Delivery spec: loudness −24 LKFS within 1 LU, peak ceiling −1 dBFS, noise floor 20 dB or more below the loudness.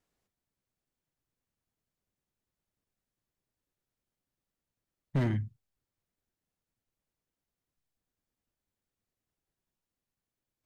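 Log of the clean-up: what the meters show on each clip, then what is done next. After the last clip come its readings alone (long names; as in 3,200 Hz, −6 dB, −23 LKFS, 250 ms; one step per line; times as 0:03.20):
share of clipped samples 0.3%; peaks flattened at −24.0 dBFS; integrated loudness −32.5 LKFS; sample peak −24.0 dBFS; target loudness −24.0 LKFS
→ clipped peaks rebuilt −24 dBFS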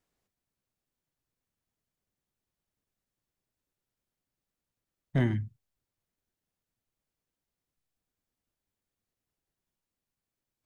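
share of clipped samples 0.0%; integrated loudness −31.0 LKFS; sample peak −15.0 dBFS; target loudness −24.0 LKFS
→ level +7 dB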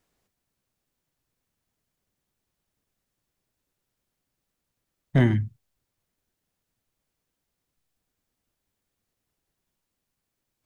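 integrated loudness −24.0 LKFS; sample peak −8.0 dBFS; background noise floor −83 dBFS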